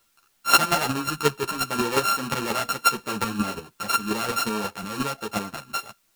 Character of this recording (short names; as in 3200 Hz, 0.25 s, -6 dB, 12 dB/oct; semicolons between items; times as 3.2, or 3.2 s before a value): a buzz of ramps at a fixed pitch in blocks of 32 samples; chopped level 5.6 Hz, depth 60%, duty 10%; a quantiser's noise floor 12-bit, dither triangular; a shimmering, thickened sound